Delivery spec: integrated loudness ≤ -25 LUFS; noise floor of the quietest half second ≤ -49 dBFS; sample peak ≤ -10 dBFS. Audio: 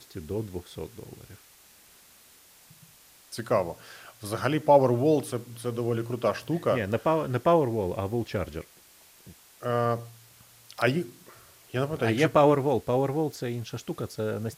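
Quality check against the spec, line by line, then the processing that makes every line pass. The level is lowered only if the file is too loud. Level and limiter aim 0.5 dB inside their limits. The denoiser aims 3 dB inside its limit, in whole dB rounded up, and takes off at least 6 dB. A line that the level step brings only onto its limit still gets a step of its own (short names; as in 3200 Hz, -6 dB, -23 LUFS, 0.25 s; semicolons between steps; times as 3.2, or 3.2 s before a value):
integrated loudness -27.0 LUFS: OK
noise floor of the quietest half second -56 dBFS: OK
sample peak -7.0 dBFS: fail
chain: limiter -10.5 dBFS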